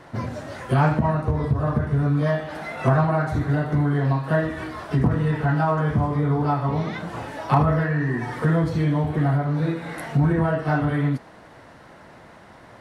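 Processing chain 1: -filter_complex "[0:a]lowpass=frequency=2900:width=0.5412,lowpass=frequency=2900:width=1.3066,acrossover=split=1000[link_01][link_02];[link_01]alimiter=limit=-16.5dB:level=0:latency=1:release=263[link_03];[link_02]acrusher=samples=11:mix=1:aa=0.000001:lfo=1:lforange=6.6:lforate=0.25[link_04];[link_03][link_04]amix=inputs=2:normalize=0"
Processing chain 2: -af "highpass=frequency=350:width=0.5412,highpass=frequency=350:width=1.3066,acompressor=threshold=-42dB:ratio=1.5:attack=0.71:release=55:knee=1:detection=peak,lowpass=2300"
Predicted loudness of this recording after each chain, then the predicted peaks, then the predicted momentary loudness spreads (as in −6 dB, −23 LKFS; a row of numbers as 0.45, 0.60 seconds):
−25.5, −35.5 LKFS; −10.5, −18.5 dBFS; 7, 14 LU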